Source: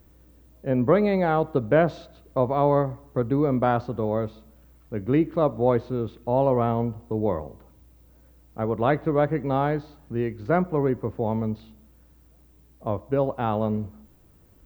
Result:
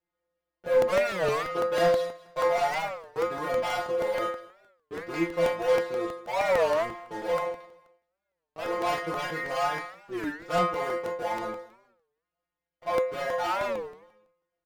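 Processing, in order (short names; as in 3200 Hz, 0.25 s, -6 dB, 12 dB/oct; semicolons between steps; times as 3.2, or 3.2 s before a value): three-band isolator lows -17 dB, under 490 Hz, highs -24 dB, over 4200 Hz; sample leveller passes 5; in parallel at -3 dB: limiter -19 dBFS, peak gain reduction 7.5 dB; on the sum: vibrato 0.63 Hz 5.3 cents; metallic resonator 170 Hz, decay 0.5 s, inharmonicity 0.002; one-sided clip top -21 dBFS; feedback echo 0.213 s, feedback 32%, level -20.5 dB; on a send at -2.5 dB: reverb, pre-delay 33 ms; on the sum: crackling interface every 0.16 s, samples 64, repeat, from 0.66; record warp 33 1/3 rpm, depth 250 cents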